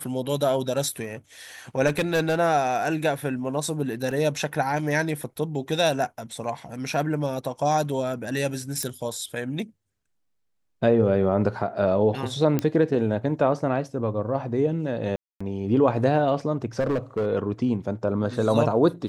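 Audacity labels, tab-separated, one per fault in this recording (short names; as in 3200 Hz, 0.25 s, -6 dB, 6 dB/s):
1.860000	2.400000	clipped -18 dBFS
4.110000	4.110000	gap 3.2 ms
8.830000	8.830000	pop -13 dBFS
12.590000	12.590000	pop -11 dBFS
15.160000	15.400000	gap 0.245 s
16.790000	17.260000	clipped -20.5 dBFS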